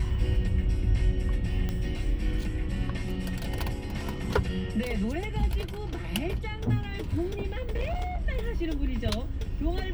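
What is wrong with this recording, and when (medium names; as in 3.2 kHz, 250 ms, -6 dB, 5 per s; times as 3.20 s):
1.69 s: pop -18 dBFS
7.52–8.23 s: clipped -25 dBFS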